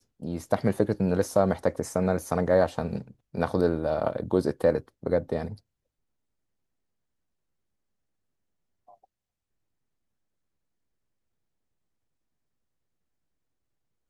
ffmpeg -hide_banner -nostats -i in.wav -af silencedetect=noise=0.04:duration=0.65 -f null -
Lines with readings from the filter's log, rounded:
silence_start: 5.45
silence_end: 14.09 | silence_duration: 8.64